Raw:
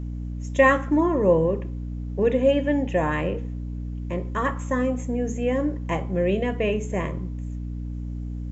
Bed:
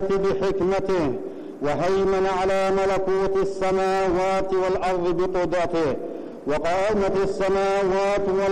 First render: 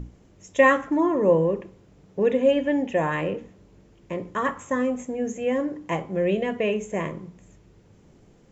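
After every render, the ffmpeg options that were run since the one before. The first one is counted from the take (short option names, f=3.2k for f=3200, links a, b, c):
-af "bandreject=f=60:t=h:w=6,bandreject=f=120:t=h:w=6,bandreject=f=180:t=h:w=6,bandreject=f=240:t=h:w=6,bandreject=f=300:t=h:w=6"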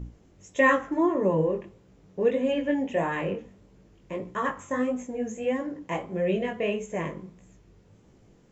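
-af "flanger=delay=15.5:depth=6.9:speed=1.6"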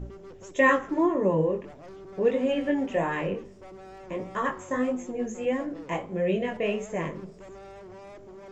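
-filter_complex "[1:a]volume=-24.5dB[a];[0:a][a]amix=inputs=2:normalize=0"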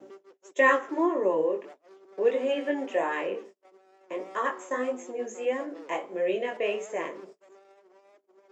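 -af "agate=range=-34dB:threshold=-43dB:ratio=16:detection=peak,highpass=f=320:w=0.5412,highpass=f=320:w=1.3066"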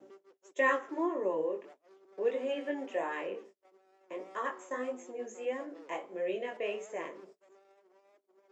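-af "volume=-7dB"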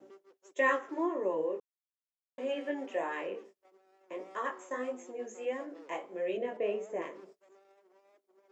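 -filter_complex "[0:a]asettb=1/sr,asplit=3[a][b][c];[a]atrim=end=6.374[d];[b]atrim=start=6.37:end=7.02,asetpts=PTS-STARTPTS,afade=t=in:d=0.004:c=qsin,afade=t=out:st=0.646:d=0.004:c=qsin,tiltshelf=f=840:g=7[e];[c]atrim=start=7.016[f];[d][e]acrossfade=d=0.004:c1=hsin:c2=qsin[g];[g][f]acrossfade=d=0.004:c1=qsin:c2=hsin,asplit=3[h][i][j];[h]atrim=end=1.6,asetpts=PTS-STARTPTS,afade=t=out:st=1.596:d=0.004:c=hsin[k];[i]atrim=start=1.6:end=2.38,asetpts=PTS-STARTPTS,volume=0[l];[j]atrim=start=2.38,asetpts=PTS-STARTPTS,afade=t=in:d=0.004:c=hsin[m];[k][l][m]concat=n=3:v=0:a=1"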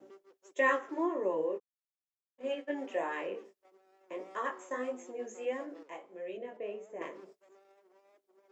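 -filter_complex "[0:a]asplit=3[a][b][c];[a]afade=t=out:st=1.57:d=0.02[d];[b]agate=range=-33dB:threshold=-33dB:ratio=3:release=100:detection=peak,afade=t=in:st=1.57:d=0.02,afade=t=out:st=2.72:d=0.02[e];[c]afade=t=in:st=2.72:d=0.02[f];[d][e][f]amix=inputs=3:normalize=0,asplit=3[g][h][i];[g]atrim=end=5.832[j];[h]atrim=start=5.828:end=7.012,asetpts=PTS-STARTPTS,volume=-7.5dB[k];[i]atrim=start=7.008[l];[j][k]acrossfade=d=0.004:c1=hsin:c2=hsin[m];[m][l]acrossfade=d=0.004:c1=hsin:c2=hsin"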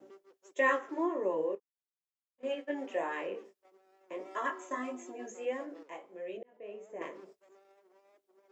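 -filter_complex "[0:a]asettb=1/sr,asplit=3[a][b][c];[a]atrim=end=4.254[d];[b]atrim=start=4.25:end=5.31,asetpts=PTS-STARTPTS,afade=t=in:d=0.004:c=qsin,afade=t=out:st=1.056:d=0.004:c=qsin,aecho=1:1:3:0.8,atrim=end_sample=46746[e];[c]atrim=start=5.306[f];[d][e]acrossfade=d=0.004:c1=hsin:c2=qsin[g];[g][f]acrossfade=d=0.004:c1=qsin:c2=hsin,asplit=4[h][i][j][k];[h]atrim=end=1.552[l];[i]atrim=start=1.548:end=2.432,asetpts=PTS-STARTPTS,volume=-10.5dB[m];[j]atrim=start=2.428:end=6.43,asetpts=PTS-STARTPTS,afade=t=out:st=3.998:d=0.004:c=hsin[n];[k]atrim=start=6.43,asetpts=PTS-STARTPTS,afade=t=in:d=0.47[o];[l][m]acrossfade=d=0.004:c1=hsin:c2=hsin[p];[n][o]concat=n=2:v=0:a=1[q];[p][q]acrossfade=d=0.004:c1=hsin:c2=hsin"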